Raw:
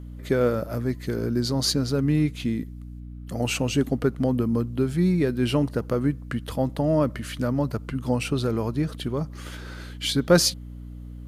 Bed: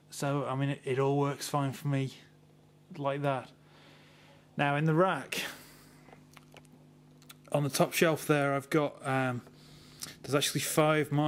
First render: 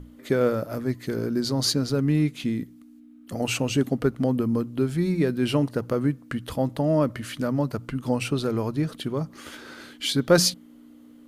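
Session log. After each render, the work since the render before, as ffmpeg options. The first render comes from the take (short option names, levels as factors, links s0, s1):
-af "bandreject=f=60:t=h:w=6,bandreject=f=120:t=h:w=6,bandreject=f=180:t=h:w=6"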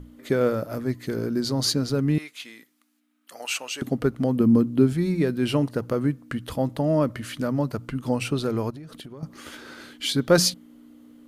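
-filter_complex "[0:a]asettb=1/sr,asplit=3[s0][s1][s2];[s0]atrim=end=2.184[s3];[s1]atrim=start=2.18:end=3.82,asetpts=PTS-STARTPTS,afade=t=in:d=0.004:c=qsin,afade=t=out:st=1.636:d=0.004:c=qsin,highpass=950[s4];[s2]atrim=start=3.816[s5];[s3][s4]acrossfade=d=0.004:c1=hsin:c2=qsin[s6];[s6][s5]acrossfade=d=0.004:c1=qsin:c2=hsin,asettb=1/sr,asplit=3[s7][s8][s9];[s7]atrim=end=4.404[s10];[s8]atrim=start=4.4:end=4.93,asetpts=PTS-STARTPTS,afade=t=in:d=0.004:c=qsin,afade=t=out:st=0.526:d=0.004:c=qsin,equalizer=f=220:t=o:w=1.8:g=8[s11];[s9]atrim=start=4.926[s12];[s10][s11]acrossfade=d=0.004:c1=hsin:c2=qsin[s13];[s13][s12]acrossfade=d=0.004:c1=qsin:c2=hsin,asettb=1/sr,asplit=3[s14][s15][s16];[s14]atrim=end=8.704[s17];[s15]atrim=start=8.7:end=9.23,asetpts=PTS-STARTPTS,afade=t=in:d=0.004:c=qsin,afade=t=out:st=0.526:d=0.004:c=qsin,acompressor=threshold=0.0158:ratio=16:attack=3.2:release=140:knee=1:detection=peak[s18];[s16]atrim=start=9.226[s19];[s17][s18]acrossfade=d=0.004:c1=hsin:c2=qsin[s20];[s20][s19]acrossfade=d=0.004:c1=qsin:c2=hsin"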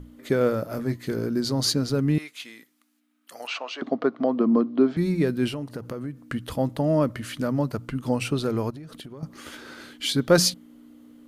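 -filter_complex "[0:a]asettb=1/sr,asplit=3[s0][s1][s2];[s0]atrim=end=0.634[s3];[s1]atrim=start=0.63:end=1.12,asetpts=PTS-STARTPTS,afade=t=in:d=0.004:c=qsin,afade=t=out:st=0.486:d=0.004:c=qsin,asplit=2[s4][s5];[s5]adelay=22,volume=0.355[s6];[s4][s6]amix=inputs=2:normalize=0,atrim=end_sample=21609[s7];[s2]atrim=start=1.116[s8];[s3][s7]acrossfade=d=0.004:c1=hsin:c2=qsin[s9];[s9][s8]acrossfade=d=0.004:c1=qsin:c2=hsin,asettb=1/sr,asplit=3[s10][s11][s12];[s10]atrim=end=3.474[s13];[s11]atrim=start=3.47:end=4.97,asetpts=PTS-STARTPTS,afade=t=in:d=0.004:c=qsin,afade=t=out:st=1.496:d=0.004:c=qsin,highpass=f=230:w=0.5412,highpass=f=230:w=1.3066,equalizer=f=670:t=q:w=4:g=9,equalizer=f=1100:t=q:w=4:g=8,equalizer=f=2700:t=q:w=4:g=-4,lowpass=f=4400:w=0.5412,lowpass=f=4400:w=1.3066[s14];[s12]atrim=start=4.966[s15];[s13][s14]acrossfade=d=0.004:c1=hsin:c2=qsin[s16];[s16][s15]acrossfade=d=0.004:c1=qsin:c2=hsin,asettb=1/sr,asplit=3[s17][s18][s19];[s17]atrim=end=5.484[s20];[s18]atrim=start=5.48:end=6.17,asetpts=PTS-STARTPTS,afade=t=in:d=0.004:c=qsin,afade=t=out:st=0.686:d=0.004:c=qsin,acompressor=threshold=0.0316:ratio=4:attack=3.2:release=140:knee=1:detection=peak[s21];[s19]atrim=start=6.166[s22];[s20][s21]acrossfade=d=0.004:c1=hsin:c2=qsin[s23];[s23][s22]acrossfade=d=0.004:c1=qsin:c2=hsin"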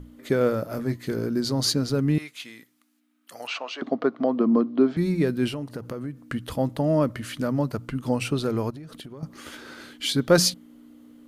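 -filter_complex "[0:a]asettb=1/sr,asplit=3[s0][s1][s2];[s0]atrim=end=2.214[s3];[s1]atrim=start=2.21:end=3.71,asetpts=PTS-STARTPTS,afade=t=in:d=0.004:c=qsin,afade=t=out:st=1.496:d=0.004:c=qsin,equalizer=f=120:w=1.5:g=10[s4];[s2]atrim=start=3.706[s5];[s3][s4]acrossfade=d=0.004:c1=hsin:c2=qsin[s6];[s6][s5]acrossfade=d=0.004:c1=qsin:c2=hsin"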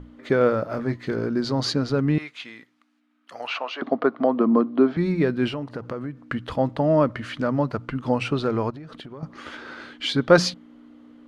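-af "lowpass=4400,equalizer=f=1100:t=o:w=2.3:g=6"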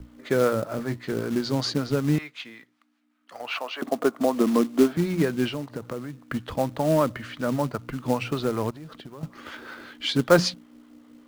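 -filter_complex "[0:a]acrossover=split=600[s0][s1];[s0]aeval=exprs='val(0)*(1-0.5/2+0.5/2*cos(2*PI*5.2*n/s))':c=same[s2];[s1]aeval=exprs='val(0)*(1-0.5/2-0.5/2*cos(2*PI*5.2*n/s))':c=same[s3];[s2][s3]amix=inputs=2:normalize=0,acrossover=split=110|2100[s4][s5][s6];[s5]acrusher=bits=4:mode=log:mix=0:aa=0.000001[s7];[s4][s7][s6]amix=inputs=3:normalize=0"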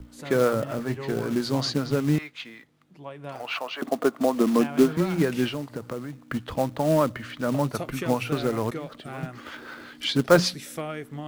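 -filter_complex "[1:a]volume=0.422[s0];[0:a][s0]amix=inputs=2:normalize=0"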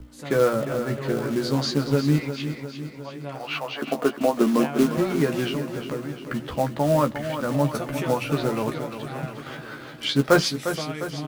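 -filter_complex "[0:a]asplit=2[s0][s1];[s1]adelay=14,volume=0.501[s2];[s0][s2]amix=inputs=2:normalize=0,asplit=2[s3][s4];[s4]aecho=0:1:353|706|1059|1412|1765|2118|2471:0.316|0.183|0.106|0.0617|0.0358|0.0208|0.012[s5];[s3][s5]amix=inputs=2:normalize=0"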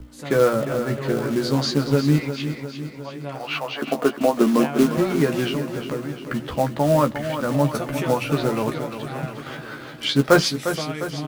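-af "volume=1.33"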